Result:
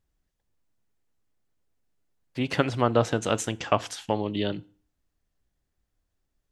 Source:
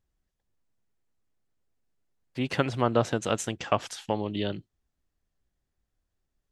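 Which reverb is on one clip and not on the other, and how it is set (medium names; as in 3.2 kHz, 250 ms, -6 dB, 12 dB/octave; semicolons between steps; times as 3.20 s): FDN reverb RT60 0.42 s, low-frequency decay 1.1×, high-frequency decay 0.9×, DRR 16.5 dB; trim +2 dB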